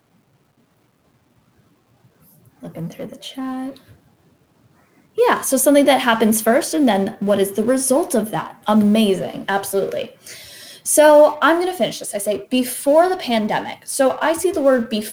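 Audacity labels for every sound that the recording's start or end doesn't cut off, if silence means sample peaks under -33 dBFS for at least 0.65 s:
2.630000	3.770000	sound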